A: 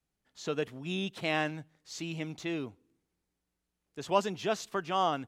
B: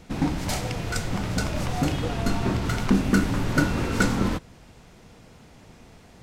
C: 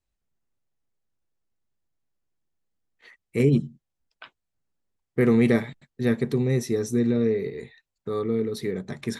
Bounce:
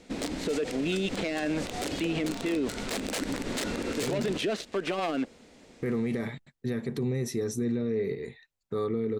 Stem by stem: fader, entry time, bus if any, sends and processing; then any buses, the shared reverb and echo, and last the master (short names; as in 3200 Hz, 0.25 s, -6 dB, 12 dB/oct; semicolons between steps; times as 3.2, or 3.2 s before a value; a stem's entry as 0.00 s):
-1.5 dB, 0.00 s, bus A, no send, LPF 2700 Hz 12 dB/oct; sample leveller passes 3; rotary speaker horn 6.3 Hz
-11.5 dB, 0.00 s, bus A, no send, high shelf 4700 Hz -2.5 dB; wrapped overs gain 16 dB
-1.5 dB, 0.65 s, no bus, no send, limiter -18 dBFS, peak gain reduction 10 dB
bus A: 0.0 dB, ten-band EQ 125 Hz -7 dB, 250 Hz +10 dB, 500 Hz +10 dB, 2000 Hz +7 dB, 4000 Hz +8 dB, 8000 Hz +11 dB; limiter -14.5 dBFS, peak gain reduction 11 dB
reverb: off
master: limiter -21.5 dBFS, peak gain reduction 10 dB